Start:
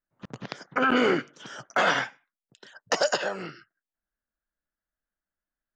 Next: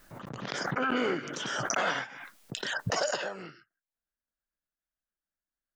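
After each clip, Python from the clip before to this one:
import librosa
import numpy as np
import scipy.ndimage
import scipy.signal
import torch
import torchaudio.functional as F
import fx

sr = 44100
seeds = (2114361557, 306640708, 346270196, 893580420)

y = fx.pre_swell(x, sr, db_per_s=23.0)
y = y * 10.0 ** (-7.0 / 20.0)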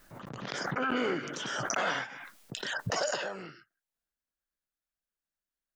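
y = fx.transient(x, sr, attack_db=-1, sustain_db=3)
y = y * 10.0 ** (-1.5 / 20.0)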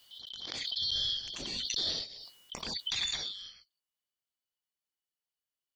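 y = fx.band_shuffle(x, sr, order='3412')
y = y * 10.0 ** (-2.5 / 20.0)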